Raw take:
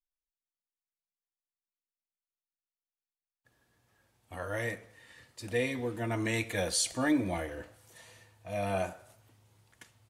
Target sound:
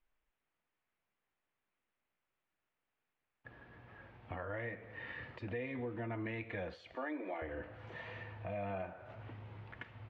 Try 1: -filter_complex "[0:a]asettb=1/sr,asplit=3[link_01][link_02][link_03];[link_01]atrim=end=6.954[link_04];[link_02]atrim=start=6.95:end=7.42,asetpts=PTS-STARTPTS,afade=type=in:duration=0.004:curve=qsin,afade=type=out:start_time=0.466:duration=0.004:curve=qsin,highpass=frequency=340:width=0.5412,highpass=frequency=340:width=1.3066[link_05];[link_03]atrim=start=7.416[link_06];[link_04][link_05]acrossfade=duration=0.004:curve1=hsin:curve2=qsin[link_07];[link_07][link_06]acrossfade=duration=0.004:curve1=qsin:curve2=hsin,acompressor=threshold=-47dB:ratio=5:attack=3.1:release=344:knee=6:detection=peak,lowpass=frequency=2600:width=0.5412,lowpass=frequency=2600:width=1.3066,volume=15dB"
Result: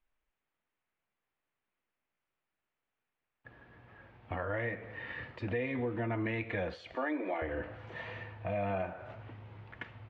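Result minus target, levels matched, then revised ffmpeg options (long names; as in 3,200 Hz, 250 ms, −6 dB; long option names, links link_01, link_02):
downward compressor: peak gain reduction −6.5 dB
-filter_complex "[0:a]asettb=1/sr,asplit=3[link_01][link_02][link_03];[link_01]atrim=end=6.954[link_04];[link_02]atrim=start=6.95:end=7.42,asetpts=PTS-STARTPTS,afade=type=in:duration=0.004:curve=qsin,afade=type=out:start_time=0.466:duration=0.004:curve=qsin,highpass=frequency=340:width=0.5412,highpass=frequency=340:width=1.3066[link_05];[link_03]atrim=start=7.416[link_06];[link_04][link_05]acrossfade=duration=0.004:curve1=hsin:curve2=qsin[link_07];[link_07][link_06]acrossfade=duration=0.004:curve1=qsin:curve2=hsin,acompressor=threshold=-55dB:ratio=5:attack=3.1:release=344:knee=6:detection=peak,lowpass=frequency=2600:width=0.5412,lowpass=frequency=2600:width=1.3066,volume=15dB"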